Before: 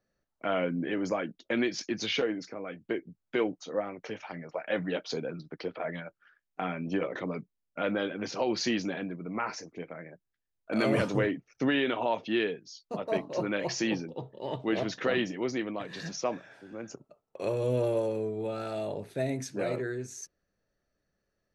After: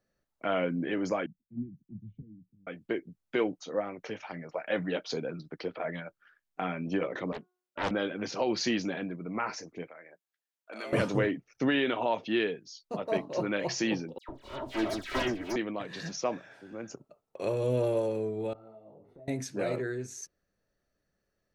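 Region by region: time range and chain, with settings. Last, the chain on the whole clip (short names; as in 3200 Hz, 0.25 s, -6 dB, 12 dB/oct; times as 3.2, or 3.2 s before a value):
1.26–2.67 inverse Chebyshev band-stop 570–9200 Hz, stop band 60 dB + low shelf 190 Hz +4.5 dB + three-band expander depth 100%
7.32–7.91 HPF 280 Hz + de-hum 363.3 Hz, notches 4 + Doppler distortion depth 0.86 ms
9.87–10.93 Bessel high-pass 610 Hz + compressor 1.5:1, threshold -51 dBFS
14.18–15.56 minimum comb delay 3.1 ms + dispersion lows, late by 0.106 s, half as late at 2200 Hz
18.53–19.28 compressor 8:1, threshold -45 dBFS + polynomial smoothing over 65 samples + detuned doubles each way 23 cents
whole clip: dry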